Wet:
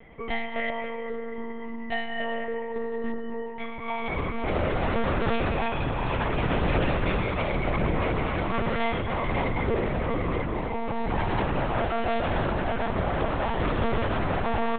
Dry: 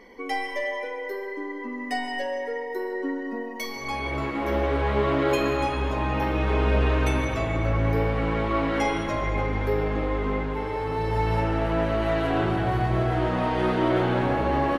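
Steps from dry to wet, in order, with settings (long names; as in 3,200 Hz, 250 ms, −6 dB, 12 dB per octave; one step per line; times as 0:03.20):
wavefolder on the positive side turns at −22.5 dBFS
mains-hum notches 60/120/180/240 Hz
one-pitch LPC vocoder at 8 kHz 230 Hz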